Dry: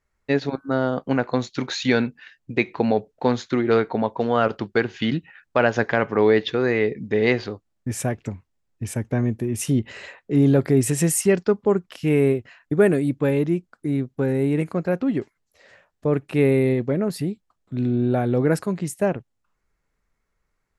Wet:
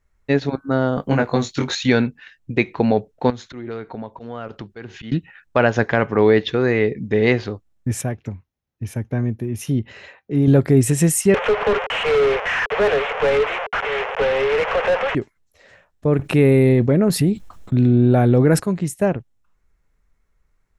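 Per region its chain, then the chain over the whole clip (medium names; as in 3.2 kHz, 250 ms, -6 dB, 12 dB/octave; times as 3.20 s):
0.95–1.75 s: treble shelf 8.8 kHz +11 dB + doubling 21 ms -3 dB
3.30–5.12 s: slow attack 156 ms + compression 2.5:1, threshold -36 dBFS
8.01–10.48 s: high-pass 61 Hz + peaking EQ 8 kHz -14.5 dB 0.26 oct + feedback comb 790 Hz, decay 0.15 s, mix 40%
11.34–15.15 s: one-bit delta coder 16 kbps, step -27.5 dBFS + Chebyshev high-pass 420 Hz, order 8 + overdrive pedal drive 24 dB, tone 2 kHz, clips at -12 dBFS
16.19–18.60 s: gate -46 dBFS, range -10 dB + level flattener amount 50%
whole clip: bass shelf 100 Hz +10.5 dB; band-stop 4.7 kHz, Q 17; trim +2 dB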